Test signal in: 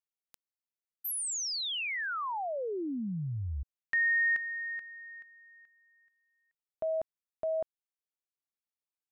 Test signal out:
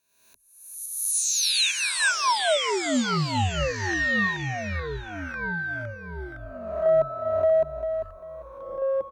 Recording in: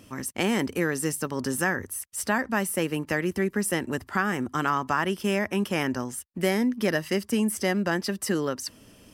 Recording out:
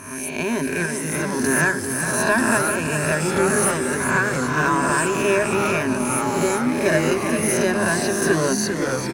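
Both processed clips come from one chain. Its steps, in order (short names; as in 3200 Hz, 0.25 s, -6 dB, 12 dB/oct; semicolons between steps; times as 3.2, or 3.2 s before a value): spectral swells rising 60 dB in 0.94 s; ripple EQ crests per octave 1.5, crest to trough 14 dB; AGC gain up to 11 dB; in parallel at -6 dB: soft clip -13 dBFS; on the sum: random-step tremolo; on a send: feedback echo 0.396 s, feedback 25%, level -8 dB; on the sum: echoes that change speed 0.664 s, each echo -3 st, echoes 3, each echo -6 dB; gain -6.5 dB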